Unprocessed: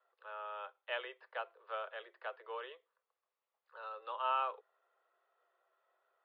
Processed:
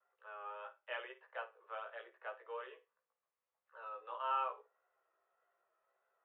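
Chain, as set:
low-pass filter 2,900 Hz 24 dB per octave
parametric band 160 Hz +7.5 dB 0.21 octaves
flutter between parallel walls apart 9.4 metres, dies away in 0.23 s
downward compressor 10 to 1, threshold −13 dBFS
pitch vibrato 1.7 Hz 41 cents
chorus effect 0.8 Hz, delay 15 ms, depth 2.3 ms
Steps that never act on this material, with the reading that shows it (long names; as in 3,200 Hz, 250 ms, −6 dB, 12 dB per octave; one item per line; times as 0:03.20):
parametric band 160 Hz: nothing at its input below 340 Hz
downward compressor, threshold −13 dBFS: peak of its input −22.5 dBFS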